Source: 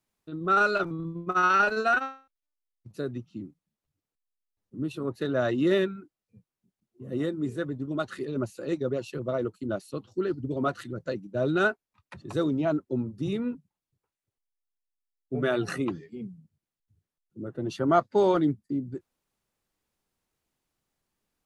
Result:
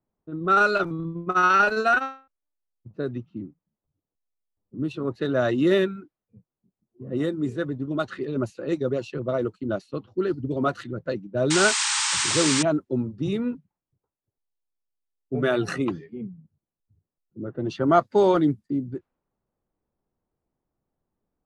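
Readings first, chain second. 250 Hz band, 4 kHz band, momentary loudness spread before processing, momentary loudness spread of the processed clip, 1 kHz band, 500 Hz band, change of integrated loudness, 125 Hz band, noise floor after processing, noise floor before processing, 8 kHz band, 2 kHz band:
+3.5 dB, +12.5 dB, 18 LU, 17 LU, +3.5 dB, +3.5 dB, +4.0 dB, +3.5 dB, under -85 dBFS, under -85 dBFS, n/a, +4.0 dB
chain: low-pass opened by the level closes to 830 Hz, open at -24 dBFS; painted sound noise, 11.5–12.63, 810–9100 Hz -28 dBFS; gain +3.5 dB

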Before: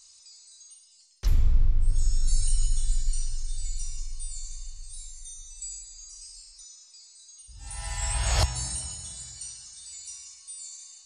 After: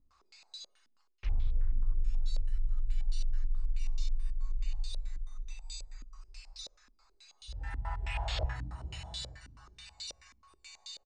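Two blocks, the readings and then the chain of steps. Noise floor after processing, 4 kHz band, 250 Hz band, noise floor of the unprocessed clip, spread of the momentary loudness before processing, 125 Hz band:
-69 dBFS, -5.5 dB, -8.0 dB, -55 dBFS, 21 LU, -7.5 dB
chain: low shelf 390 Hz -6 dB; reverse; compressor 16:1, threshold -38 dBFS, peak gain reduction 19 dB; reverse; low shelf 69 Hz +12 dB; outdoor echo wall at 90 m, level -21 dB; stepped low-pass 9.3 Hz 260–3700 Hz; gain +4 dB

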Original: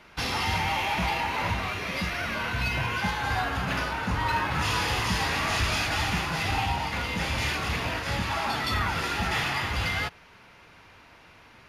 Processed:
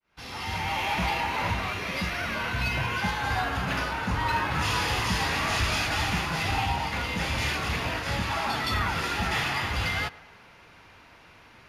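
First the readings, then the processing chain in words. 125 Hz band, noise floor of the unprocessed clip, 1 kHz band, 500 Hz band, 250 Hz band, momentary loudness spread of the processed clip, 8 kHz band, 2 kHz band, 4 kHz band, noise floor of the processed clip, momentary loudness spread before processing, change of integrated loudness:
0.0 dB, -53 dBFS, 0.0 dB, 0.0 dB, 0.0 dB, 4 LU, -0.5 dB, 0.0 dB, -0.5 dB, -53 dBFS, 3 LU, 0.0 dB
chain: opening faded in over 0.90 s; tape echo 0.11 s, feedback 72%, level -19 dB, low-pass 2400 Hz

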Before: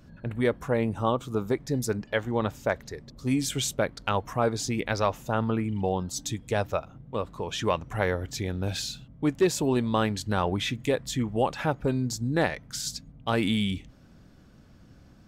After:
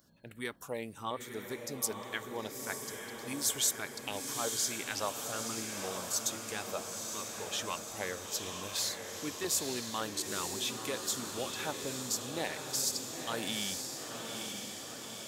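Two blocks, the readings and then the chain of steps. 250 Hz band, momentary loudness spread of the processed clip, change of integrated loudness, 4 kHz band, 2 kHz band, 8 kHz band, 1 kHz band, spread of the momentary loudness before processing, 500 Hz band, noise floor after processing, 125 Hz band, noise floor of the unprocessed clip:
-14.0 dB, 9 LU, -7.0 dB, -1.5 dB, -6.5 dB, +3.5 dB, -9.5 dB, 7 LU, -12.0 dB, -46 dBFS, -19.0 dB, -54 dBFS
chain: RIAA curve recording; LFO notch saw down 1.8 Hz 440–2700 Hz; diffused feedback echo 0.928 s, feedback 66%, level -5 dB; gain -9 dB

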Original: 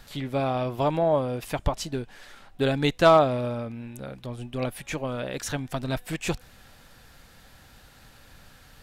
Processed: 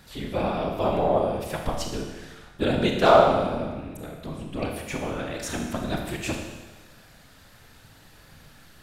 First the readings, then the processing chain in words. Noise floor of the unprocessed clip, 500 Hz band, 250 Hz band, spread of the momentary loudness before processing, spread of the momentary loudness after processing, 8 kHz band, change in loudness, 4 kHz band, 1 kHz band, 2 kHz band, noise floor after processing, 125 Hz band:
-53 dBFS, +1.0 dB, +1.0 dB, 17 LU, 19 LU, +0.5 dB, +1.0 dB, +1.0 dB, +2.0 dB, +1.0 dB, -53 dBFS, -2.0 dB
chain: whisperiser; Schroeder reverb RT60 1.2 s, combs from 26 ms, DRR 2 dB; gain -1.5 dB

